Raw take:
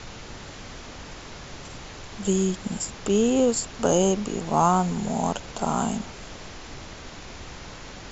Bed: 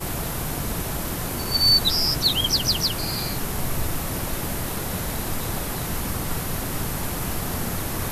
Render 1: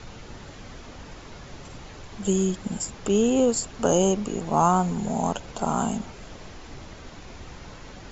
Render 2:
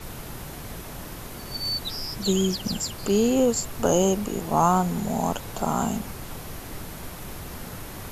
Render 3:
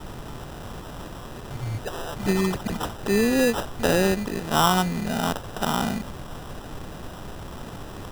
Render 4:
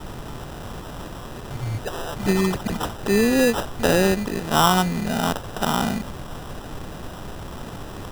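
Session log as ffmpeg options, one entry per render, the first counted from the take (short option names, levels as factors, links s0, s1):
-af "afftdn=nr=6:nf=-41"
-filter_complex "[1:a]volume=0.266[s0];[0:a][s0]amix=inputs=2:normalize=0"
-af "acrusher=samples=20:mix=1:aa=0.000001"
-af "volume=1.33"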